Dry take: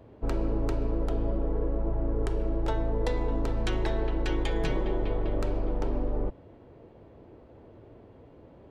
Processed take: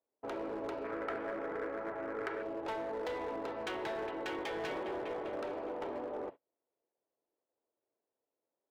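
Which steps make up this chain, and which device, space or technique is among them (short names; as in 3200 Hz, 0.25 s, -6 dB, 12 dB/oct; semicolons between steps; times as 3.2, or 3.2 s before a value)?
walkie-talkie (BPF 490–2900 Hz; hard clip -34.5 dBFS, distortion -12 dB; gate -46 dBFS, range -33 dB); 0.84–2.43 band shelf 1700 Hz +10.5 dB 1.1 oct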